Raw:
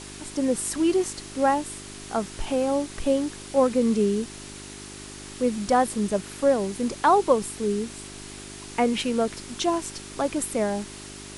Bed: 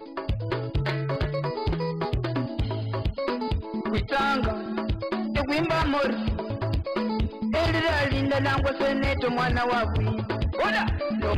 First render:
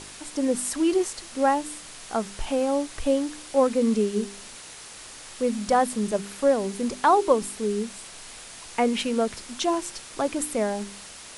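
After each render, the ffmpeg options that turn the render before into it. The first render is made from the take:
-af "bandreject=f=50:t=h:w=4,bandreject=f=100:t=h:w=4,bandreject=f=150:t=h:w=4,bandreject=f=200:t=h:w=4,bandreject=f=250:t=h:w=4,bandreject=f=300:t=h:w=4,bandreject=f=350:t=h:w=4,bandreject=f=400:t=h:w=4"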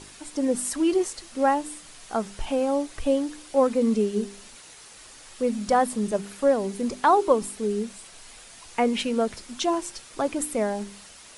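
-af "afftdn=nr=6:nf=-43"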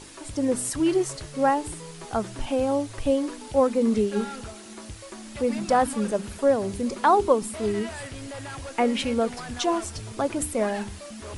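-filter_complex "[1:a]volume=0.211[s0];[0:a][s0]amix=inputs=2:normalize=0"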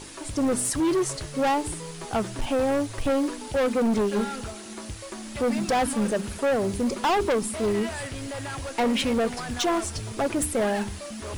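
-filter_complex "[0:a]asplit=2[s0][s1];[s1]acrusher=bits=4:mode=log:mix=0:aa=0.000001,volume=0.422[s2];[s0][s2]amix=inputs=2:normalize=0,asoftclip=type=hard:threshold=0.1"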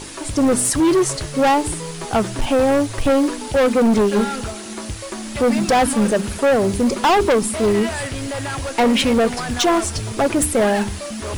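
-af "volume=2.51"

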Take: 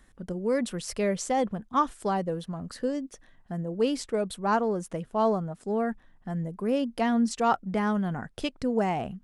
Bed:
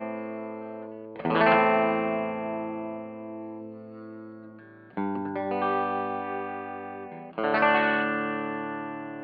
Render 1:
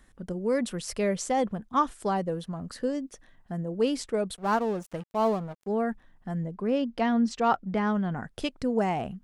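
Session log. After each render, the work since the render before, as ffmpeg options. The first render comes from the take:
-filter_complex "[0:a]asplit=3[s0][s1][s2];[s0]afade=t=out:st=4.35:d=0.02[s3];[s1]aeval=exprs='sgn(val(0))*max(abs(val(0))-0.00794,0)':c=same,afade=t=in:st=4.35:d=0.02,afade=t=out:st=5.66:d=0.02[s4];[s2]afade=t=in:st=5.66:d=0.02[s5];[s3][s4][s5]amix=inputs=3:normalize=0,asettb=1/sr,asplit=3[s6][s7][s8];[s6]atrim=end=6.444[s9];[s7]atrim=start=6.44:end=8.17,asetpts=PTS-STARTPTS,afade=t=in:d=0.004:c=qsin,afade=t=out:st=1.726:d=0.004:c=qsin,lowpass=5300[s10];[s8]atrim=start=8.166[s11];[s9][s10]acrossfade=d=0.004:c1=hsin:c2=qsin[s12];[s12][s11]acrossfade=d=0.004:c1=qsin:c2=hsin"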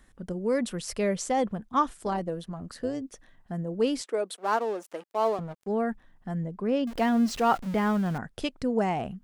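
-filter_complex "[0:a]asettb=1/sr,asplit=3[s0][s1][s2];[s0]atrim=end=1.974[s3];[s1]atrim=start=1.97:end=3.02,asetpts=PTS-STARTPTS,afade=t=in:d=0.004:c=qsin,afade=t=out:st=1.046:d=0.004:c=qsin,tremolo=f=160:d=0.462[s4];[s2]atrim=start=3.016[s5];[s3][s4]acrossfade=d=0.004:c1=hsin:c2=qsin[s6];[s6][s5]acrossfade=d=0.004:c1=qsin:c2=hsin,asettb=1/sr,asplit=3[s7][s8][s9];[s7]atrim=end=4.014[s10];[s8]atrim=start=4.01:end=5.39,asetpts=PTS-STARTPTS,afade=t=in:d=0.004:c=qsin,afade=t=out:st=1.376:d=0.004:c=qsin,highpass=f=300:w=0.5412,highpass=f=300:w=1.3066[s11];[s9]atrim=start=5.386[s12];[s10][s11]acrossfade=d=0.004:c1=hsin:c2=qsin[s13];[s13][s12]acrossfade=d=0.004:c1=qsin:c2=hsin,asettb=1/sr,asplit=3[s14][s15][s16];[s14]atrim=end=6.874[s17];[s15]atrim=start=6.87:end=8.18,asetpts=PTS-STARTPTS,afade=t=in:d=0.004:c=qsin,afade=t=out:st=1.306:d=0.004:c=qsin,aeval=exprs='val(0)+0.5*0.0158*sgn(val(0))':c=same[s18];[s16]atrim=start=8.176[s19];[s17][s18]acrossfade=d=0.004:c1=hsin:c2=qsin[s20];[s20][s19]acrossfade=d=0.004:c1=qsin:c2=hsin"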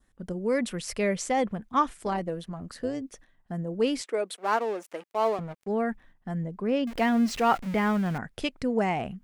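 -af "agate=range=0.398:threshold=0.00251:ratio=16:detection=peak,adynamicequalizer=threshold=0.00316:dfrequency=2200:dqfactor=2.1:tfrequency=2200:tqfactor=2.1:attack=5:release=100:ratio=0.375:range=3:mode=boostabove:tftype=bell"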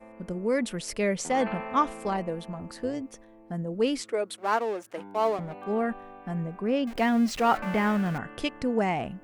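-filter_complex "[1:a]volume=0.168[s0];[0:a][s0]amix=inputs=2:normalize=0"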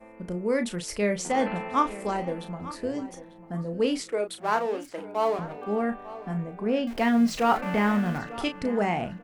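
-filter_complex "[0:a]asplit=2[s0][s1];[s1]adelay=34,volume=0.376[s2];[s0][s2]amix=inputs=2:normalize=0,asplit=2[s3][s4];[s4]adelay=895,lowpass=f=4700:p=1,volume=0.158,asplit=2[s5][s6];[s6]adelay=895,lowpass=f=4700:p=1,volume=0.25[s7];[s3][s5][s7]amix=inputs=3:normalize=0"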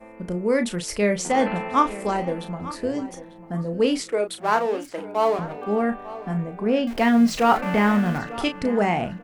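-af "volume=1.68"

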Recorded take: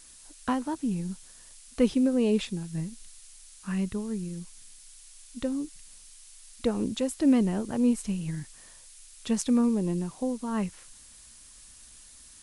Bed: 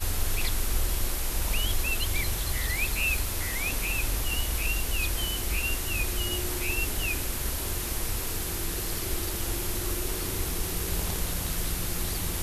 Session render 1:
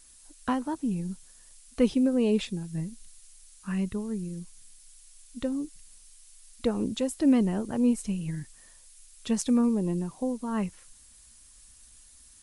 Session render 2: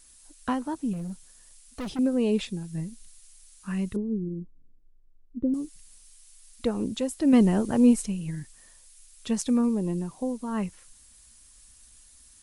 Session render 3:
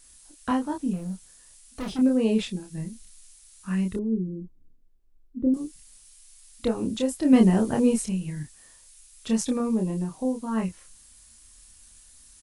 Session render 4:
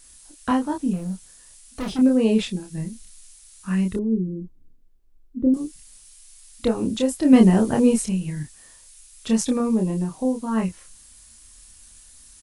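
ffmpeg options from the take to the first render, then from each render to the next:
-af "afftdn=nr=6:nf=-52"
-filter_complex "[0:a]asettb=1/sr,asplit=3[s0][s1][s2];[s0]atrim=end=0.934[s3];[s1]atrim=start=0.93:end=1.99,asetpts=PTS-STARTPTS,afade=t=in:d=0.004:c=qsin,afade=t=out:st=1.056:d=0.004:c=qsin,volume=35.5,asoftclip=hard,volume=0.0282[s4];[s2]atrim=start=1.986[s5];[s3][s4]acrossfade=d=0.004:c1=hsin:c2=qsin[s6];[s6][s5]acrossfade=d=0.004:c1=qsin:c2=hsin,asettb=1/sr,asplit=3[s7][s8][s9];[s7]atrim=end=3.964[s10];[s8]atrim=start=3.96:end=5.54,asetpts=PTS-STARTPTS,afade=t=in:d=0.004:c=qsin,afade=t=out:st=1.576:d=0.004:c=qsin,lowpass=f=340:t=q:w=2.6[s11];[s9]atrim=start=5.536[s12];[s10][s11]acrossfade=d=0.004:c1=hsin:c2=qsin[s13];[s13][s12]acrossfade=d=0.004:c1=qsin:c2=hsin,asettb=1/sr,asplit=3[s14][s15][s16];[s14]atrim=end=7.334[s17];[s15]atrim=start=7.33:end=8.06,asetpts=PTS-STARTPTS,afade=t=in:d=0.004:c=qsin,afade=t=out:st=0.726:d=0.004:c=qsin,acontrast=43[s18];[s16]atrim=start=8.056[s19];[s17][s18]acrossfade=d=0.004:c1=hsin:c2=qsin[s20];[s20][s19]acrossfade=d=0.004:c1=qsin:c2=hsin"
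-filter_complex "[0:a]asplit=2[s0][s1];[s1]adelay=27,volume=0.708[s2];[s0][s2]amix=inputs=2:normalize=0"
-af "volume=1.58"

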